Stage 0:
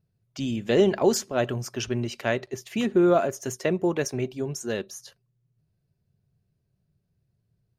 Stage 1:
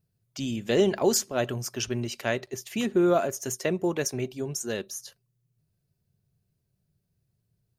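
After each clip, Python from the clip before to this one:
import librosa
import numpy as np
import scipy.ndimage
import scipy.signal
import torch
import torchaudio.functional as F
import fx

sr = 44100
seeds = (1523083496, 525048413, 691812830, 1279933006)

y = fx.high_shelf(x, sr, hz=5400.0, db=10.0)
y = y * librosa.db_to_amplitude(-2.5)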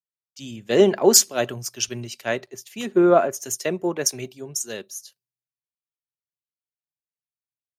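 y = fx.highpass(x, sr, hz=220.0, slope=6)
y = fx.band_widen(y, sr, depth_pct=100)
y = y * librosa.db_to_amplitude(3.5)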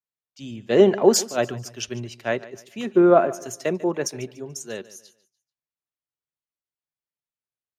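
y = fx.lowpass(x, sr, hz=2300.0, slope=6)
y = fx.echo_feedback(y, sr, ms=145, feedback_pct=33, wet_db=-18.5)
y = y * librosa.db_to_amplitude(1.0)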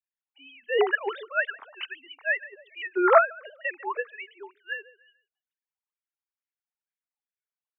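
y = fx.sine_speech(x, sr)
y = fx.filter_lfo_highpass(y, sr, shape='sine', hz=2.2, low_hz=860.0, high_hz=1800.0, q=2.7)
y = y * librosa.db_to_amplitude(4.0)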